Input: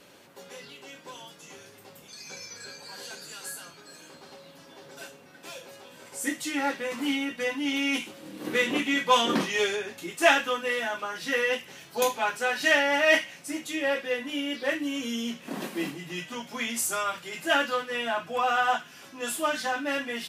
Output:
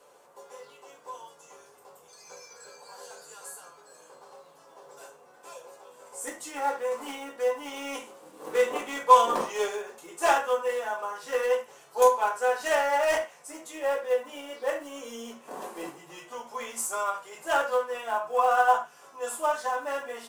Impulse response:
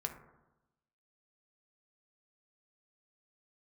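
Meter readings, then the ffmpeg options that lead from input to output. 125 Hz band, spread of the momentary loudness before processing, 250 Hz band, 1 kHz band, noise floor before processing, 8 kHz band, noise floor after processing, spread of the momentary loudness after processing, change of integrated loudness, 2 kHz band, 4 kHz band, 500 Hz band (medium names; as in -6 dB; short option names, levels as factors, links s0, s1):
under -10 dB, 22 LU, -12.5 dB, +4.0 dB, -52 dBFS, -2.5 dB, -56 dBFS, 22 LU, 0.0 dB, -7.0 dB, -10.0 dB, +2.5 dB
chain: -filter_complex "[0:a]aeval=exprs='0.501*(cos(1*acos(clip(val(0)/0.501,-1,1)))-cos(1*PI/2))+0.2*(cos(5*acos(clip(val(0)/0.501,-1,1)))-cos(5*PI/2))+0.0126*(cos(6*acos(clip(val(0)/0.501,-1,1)))-cos(6*PI/2))+0.141*(cos(7*acos(clip(val(0)/0.501,-1,1)))-cos(7*PI/2))':c=same,acrossover=split=120[s0][s1];[s1]acrusher=bits=5:mode=log:mix=0:aa=0.000001[s2];[s0][s2]amix=inputs=2:normalize=0,asoftclip=type=hard:threshold=0.251,equalizer=f=125:t=o:w=1:g=-11,equalizer=f=250:t=o:w=1:g=-7,equalizer=f=500:t=o:w=1:g=9,equalizer=f=1000:t=o:w=1:g=11,equalizer=f=2000:t=o:w=1:g=-4,equalizer=f=4000:t=o:w=1:g=-4,equalizer=f=8000:t=o:w=1:g=8[s3];[1:a]atrim=start_sample=2205,afade=t=out:st=0.14:d=0.01,atrim=end_sample=6615[s4];[s3][s4]afir=irnorm=-1:irlink=0,volume=0.376"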